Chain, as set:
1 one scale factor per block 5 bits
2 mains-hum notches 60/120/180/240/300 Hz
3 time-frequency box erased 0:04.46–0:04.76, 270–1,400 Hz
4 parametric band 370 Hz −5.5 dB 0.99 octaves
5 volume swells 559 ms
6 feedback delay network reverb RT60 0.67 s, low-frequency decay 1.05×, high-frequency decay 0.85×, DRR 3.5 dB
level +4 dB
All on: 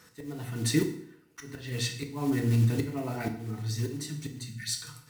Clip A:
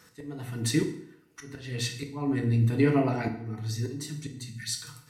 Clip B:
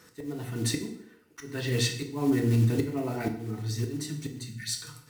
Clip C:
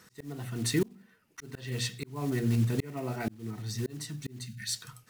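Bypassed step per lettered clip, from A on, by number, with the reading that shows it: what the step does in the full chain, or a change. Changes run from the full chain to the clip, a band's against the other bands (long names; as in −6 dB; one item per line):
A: 1, distortion level −24 dB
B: 4, 500 Hz band +2.0 dB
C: 6, change in momentary loudness spread −2 LU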